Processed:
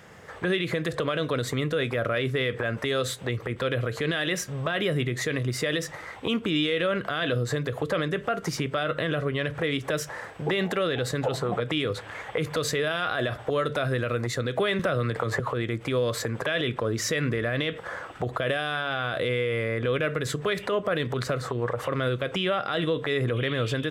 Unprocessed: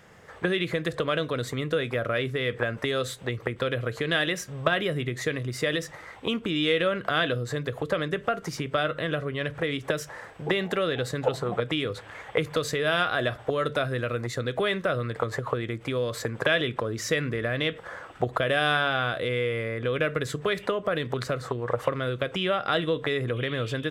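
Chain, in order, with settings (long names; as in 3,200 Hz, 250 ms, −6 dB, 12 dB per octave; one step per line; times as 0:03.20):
high-pass filter 46 Hz
brickwall limiter −21 dBFS, peak gain reduction 11 dB
0:14.79–0:15.40: multiband upward and downward compressor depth 70%
level +4 dB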